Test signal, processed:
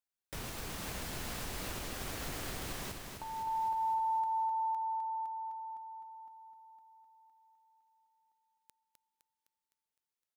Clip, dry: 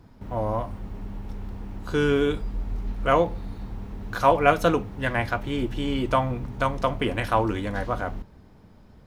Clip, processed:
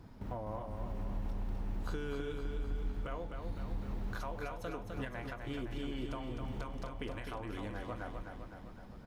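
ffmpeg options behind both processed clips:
ffmpeg -i in.wav -af "acompressor=threshold=-33dB:ratio=6,alimiter=level_in=4.5dB:limit=-24dB:level=0:latency=1:release=342,volume=-4.5dB,aecho=1:1:256|512|768|1024|1280|1536|1792|2048:0.531|0.313|0.185|0.109|0.0643|0.038|0.0224|0.0132,volume=-2.5dB" out.wav

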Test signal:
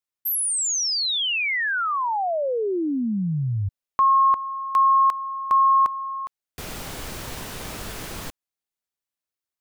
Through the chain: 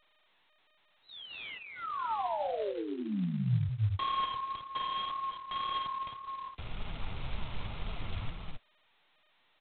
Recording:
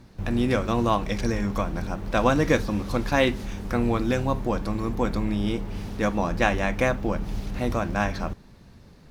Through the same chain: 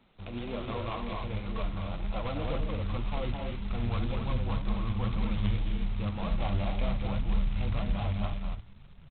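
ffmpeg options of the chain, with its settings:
ffmpeg -i in.wav -filter_complex "[0:a]lowshelf=frequency=380:gain=-10,acrossover=split=100|1100[link_01][link_02][link_03];[link_03]acompressor=threshold=-42dB:ratio=6:attack=24:release=85:knee=1:detection=rms[link_04];[link_01][link_02][link_04]amix=inputs=3:normalize=0,asoftclip=type=hard:threshold=-24dB,asuperstop=centerf=1700:order=12:qfactor=2.9,asubboost=boost=9:cutoff=120,asplit=2[link_05][link_06];[link_06]aecho=0:1:209.9|265.3:0.562|0.501[link_07];[link_05][link_07]amix=inputs=2:normalize=0,flanger=delay=4.5:depth=6:regen=34:speed=1.9:shape=sinusoidal,volume=-3dB" -ar 8000 -c:a adpcm_g726 -b:a 16k out.wav

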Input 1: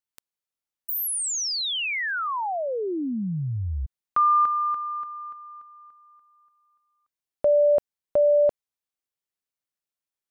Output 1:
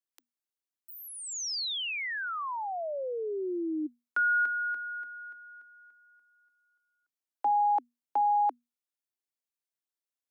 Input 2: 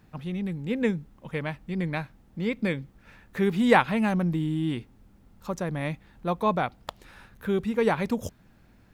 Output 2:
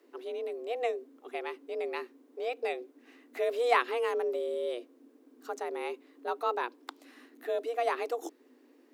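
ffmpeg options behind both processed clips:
ffmpeg -i in.wav -filter_complex "[0:a]afreqshift=240,bass=frequency=250:gain=10,treble=frequency=4000:gain=3,acrossover=split=6300[link_01][link_02];[link_02]acompressor=threshold=-41dB:ratio=4:attack=1:release=60[link_03];[link_01][link_03]amix=inputs=2:normalize=0,volume=-7dB" out.wav

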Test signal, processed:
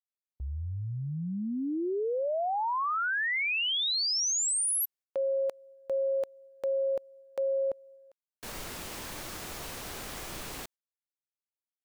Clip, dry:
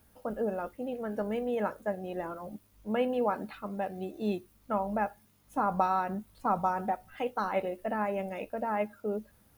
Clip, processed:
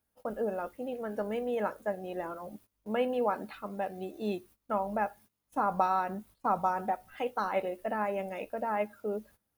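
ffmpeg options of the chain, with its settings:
ffmpeg -i in.wav -af "bass=frequency=250:gain=-5,treble=frequency=4000:gain=1,agate=range=-17dB:threshold=-54dB:ratio=16:detection=peak" out.wav

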